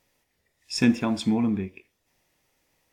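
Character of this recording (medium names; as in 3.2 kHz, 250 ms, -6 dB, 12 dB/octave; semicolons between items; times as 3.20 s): noise floor -75 dBFS; spectral tilt -5.5 dB/octave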